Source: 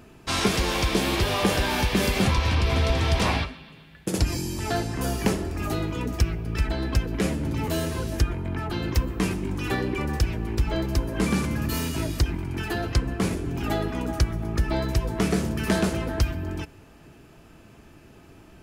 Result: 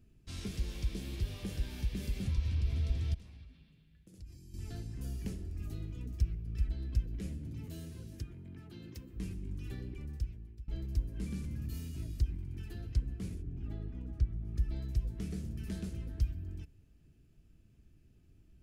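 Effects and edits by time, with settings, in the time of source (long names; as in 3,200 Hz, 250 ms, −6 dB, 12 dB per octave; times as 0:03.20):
0:03.14–0:04.54: downward compressor 5 to 1, threshold −37 dBFS
0:07.39–0:09.12: high-pass filter 83 Hz → 200 Hz
0:09.84–0:10.68: fade out, to −22 dB
0:13.41–0:14.46: low-pass filter 1,200 Hz → 2,000 Hz 6 dB per octave
whole clip: guitar amp tone stack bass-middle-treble 10-0-1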